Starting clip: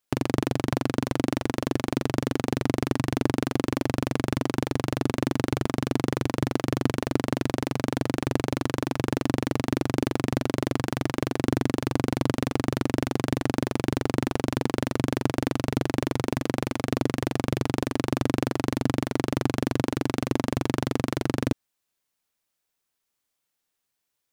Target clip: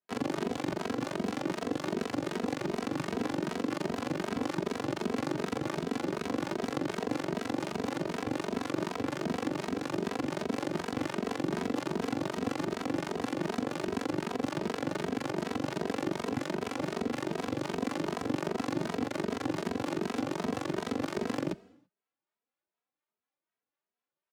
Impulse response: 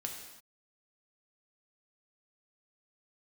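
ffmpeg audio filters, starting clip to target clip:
-filter_complex "[0:a]lowpass=9500,acrossover=split=650[s0][s1];[s0]aeval=exprs='val(0)*(1-0.5/2+0.5/2*cos(2*PI*4.1*n/s))':c=same[s2];[s1]aeval=exprs='val(0)*(1-0.5/2-0.5/2*cos(2*PI*4.1*n/s))':c=same[s3];[s2][s3]amix=inputs=2:normalize=0,adynamicsmooth=sensitivity=5:basefreq=2000,highpass=240,alimiter=limit=0.119:level=0:latency=1:release=44,asplit=4[s4][s5][s6][s7];[s5]asetrate=29433,aresample=44100,atempo=1.49831,volume=0.501[s8];[s6]asetrate=52444,aresample=44100,atempo=0.840896,volume=0.447[s9];[s7]asetrate=66075,aresample=44100,atempo=0.66742,volume=0.178[s10];[s4][s8][s9][s10]amix=inputs=4:normalize=0,asplit=2[s11][s12];[1:a]atrim=start_sample=2205[s13];[s12][s13]afir=irnorm=-1:irlink=0,volume=0.211[s14];[s11][s14]amix=inputs=2:normalize=0,asplit=2[s15][s16];[s16]adelay=2.8,afreqshift=2.6[s17];[s15][s17]amix=inputs=2:normalize=1"

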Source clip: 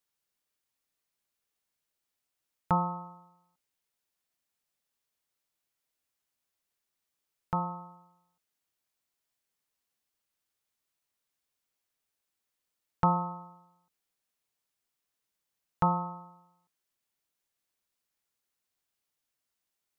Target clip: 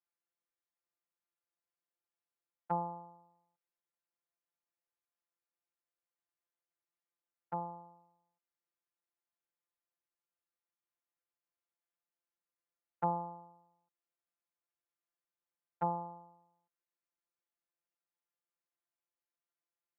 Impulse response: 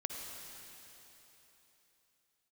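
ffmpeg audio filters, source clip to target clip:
-filter_complex "[0:a]acrossover=split=200 2200:gain=0.0708 1 0.0891[s0][s1][s2];[s0][s1][s2]amix=inputs=3:normalize=0,afftfilt=real='hypot(re,im)*cos(PI*b)':imag='0':win_size=1024:overlap=0.75,volume=0.668"

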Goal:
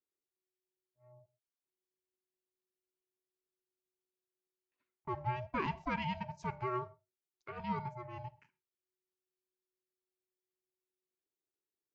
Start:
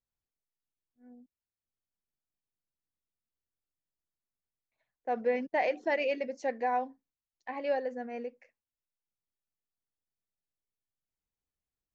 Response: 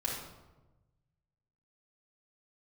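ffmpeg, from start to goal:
-filter_complex "[0:a]asplit=2[s0][s1];[1:a]atrim=start_sample=2205,atrim=end_sample=3969,adelay=49[s2];[s1][s2]afir=irnorm=-1:irlink=0,volume=0.0668[s3];[s0][s3]amix=inputs=2:normalize=0,aeval=exprs='val(0)*sin(2*PI*370*n/s)':c=same,volume=0.631"

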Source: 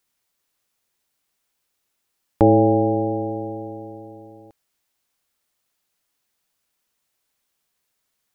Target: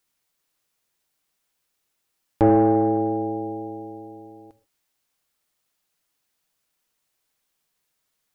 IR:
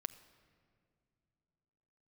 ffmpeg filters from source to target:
-filter_complex "[0:a]acontrast=51[s0];[1:a]atrim=start_sample=2205,afade=t=out:st=0.2:d=0.01,atrim=end_sample=9261[s1];[s0][s1]afir=irnorm=-1:irlink=0,volume=0.596"

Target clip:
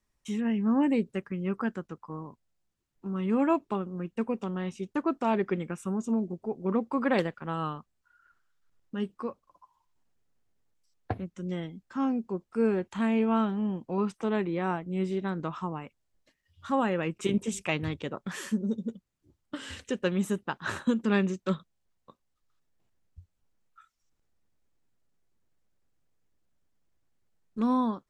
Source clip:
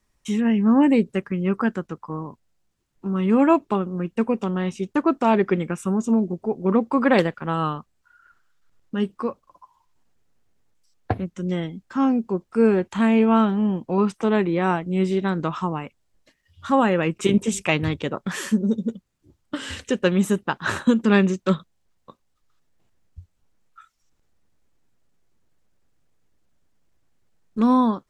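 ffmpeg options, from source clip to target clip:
-filter_complex "[0:a]asplit=3[s0][s1][s2];[s0]afade=t=out:st=14.61:d=0.02[s3];[s1]adynamicequalizer=threshold=0.0178:dfrequency=2100:dqfactor=0.7:tfrequency=2100:tqfactor=0.7:attack=5:release=100:ratio=0.375:range=2.5:mode=cutabove:tftype=highshelf,afade=t=in:st=14.61:d=0.02,afade=t=out:st=15.81:d=0.02[s4];[s2]afade=t=in:st=15.81:d=0.02[s5];[s3][s4][s5]amix=inputs=3:normalize=0,volume=0.376"

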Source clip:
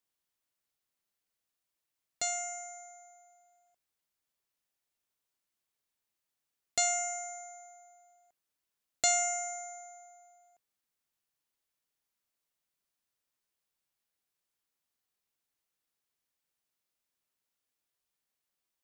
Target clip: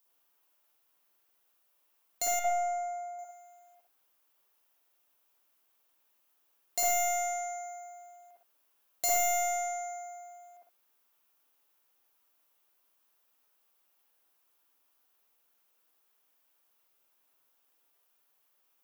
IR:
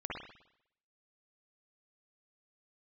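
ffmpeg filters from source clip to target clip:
-filter_complex "[0:a]asplit=2[s0][s1];[s1]highpass=f=720:p=1,volume=10,asoftclip=type=tanh:threshold=0.224[s2];[s0][s2]amix=inputs=2:normalize=0,lowpass=f=2700:p=1,volume=0.501,equalizer=f=125:t=o:w=1:g=-12,equalizer=f=250:t=o:w=1:g=4,equalizer=f=2000:t=o:w=1:g=-10,equalizer=f=4000:t=o:w=1:g=-7,equalizer=f=8000:t=o:w=1:g=-10,asoftclip=type=tanh:threshold=0.0562,asettb=1/sr,asplit=3[s3][s4][s5];[s3]atrim=end=2.394[s6];[s4]atrim=start=2.39:end=3.19,asetpts=PTS-STARTPTS,afade=t=in:d=0.004:c=qsin,afade=t=out:st=0.796:d=0.004:c=qsin,tiltshelf=f=1400:g=9.5[s7];[s5]atrim=start=3.186[s8];[s6][s7]acrossfade=d=0.004:c1=hsin:c2=qsin[s9];[s9][s8]acrossfade=d=0.004:c1=qsin:c2=hsin,crystalizer=i=6:c=0[s10];[1:a]atrim=start_sample=2205,afade=t=out:st=0.18:d=0.01,atrim=end_sample=8379[s11];[s10][s11]afir=irnorm=-1:irlink=0"

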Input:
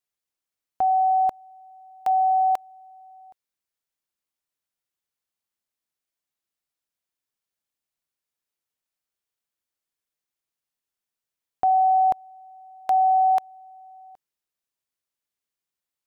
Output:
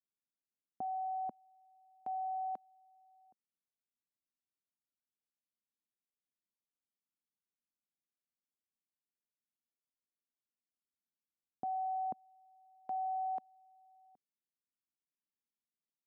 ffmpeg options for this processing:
-af "bandpass=f=230:t=q:w=2.2:csg=0,volume=0.794"

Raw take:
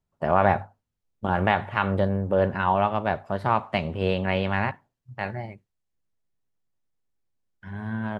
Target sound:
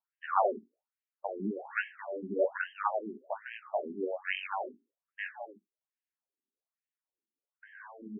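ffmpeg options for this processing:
-af "flanger=delay=9.3:depth=8:regen=-5:speed=0.72:shape=sinusoidal,afftfilt=real='re*between(b*sr/1024,280*pow(2300/280,0.5+0.5*sin(2*PI*1.2*pts/sr))/1.41,280*pow(2300/280,0.5+0.5*sin(2*PI*1.2*pts/sr))*1.41)':imag='im*between(b*sr/1024,280*pow(2300/280,0.5+0.5*sin(2*PI*1.2*pts/sr))/1.41,280*pow(2300/280,0.5+0.5*sin(2*PI*1.2*pts/sr))*1.41)':win_size=1024:overlap=0.75"

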